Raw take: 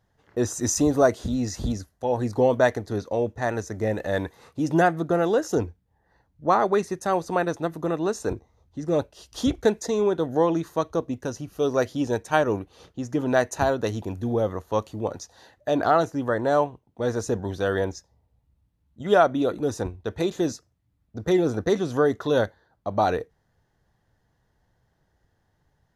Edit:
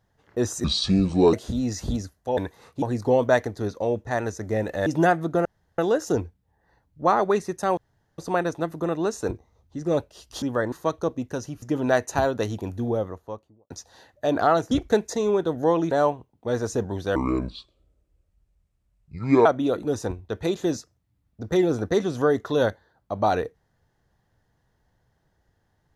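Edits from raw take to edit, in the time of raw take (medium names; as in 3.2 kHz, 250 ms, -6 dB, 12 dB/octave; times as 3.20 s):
0.64–1.09 s: speed 65%
4.17–4.62 s: move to 2.13 s
5.21 s: insert room tone 0.33 s
7.20 s: insert room tone 0.41 s
9.44–10.64 s: swap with 16.15–16.45 s
11.54–13.06 s: delete
14.13–15.14 s: studio fade out
17.69–19.21 s: speed 66%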